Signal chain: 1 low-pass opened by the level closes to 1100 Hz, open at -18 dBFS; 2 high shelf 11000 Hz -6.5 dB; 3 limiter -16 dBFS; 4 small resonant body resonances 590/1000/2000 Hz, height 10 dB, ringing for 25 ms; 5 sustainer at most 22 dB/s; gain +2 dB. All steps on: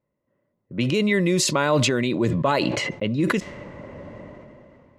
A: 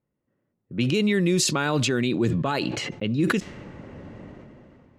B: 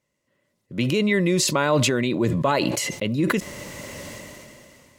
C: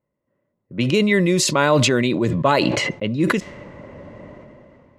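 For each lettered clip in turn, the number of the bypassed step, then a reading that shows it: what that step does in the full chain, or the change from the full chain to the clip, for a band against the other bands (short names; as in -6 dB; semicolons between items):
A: 4, 1 kHz band -3.0 dB; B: 1, 8 kHz band +2.0 dB; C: 3, mean gain reduction 1.5 dB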